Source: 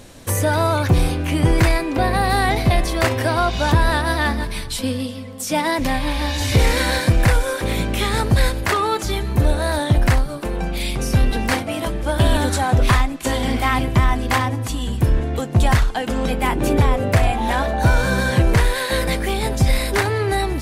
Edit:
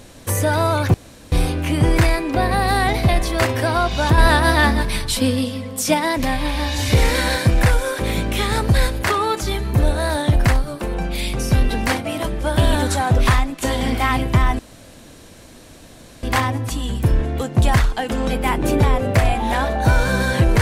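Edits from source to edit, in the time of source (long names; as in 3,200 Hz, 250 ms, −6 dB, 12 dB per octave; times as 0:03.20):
0:00.94: splice in room tone 0.38 s
0:03.80–0:05.56: clip gain +4.5 dB
0:14.21: splice in room tone 1.64 s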